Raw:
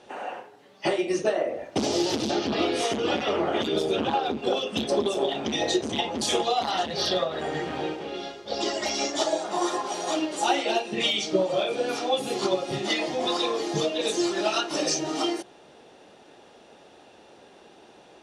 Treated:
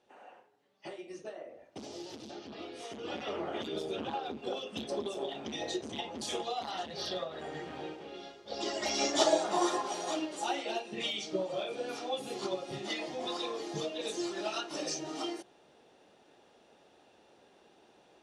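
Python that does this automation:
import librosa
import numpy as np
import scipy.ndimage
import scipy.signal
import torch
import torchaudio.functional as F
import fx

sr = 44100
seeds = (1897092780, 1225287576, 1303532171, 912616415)

y = fx.gain(x, sr, db=fx.line((2.77, -19.5), (3.24, -11.5), (8.39, -11.5), (9.27, 0.0), (10.48, -10.5)))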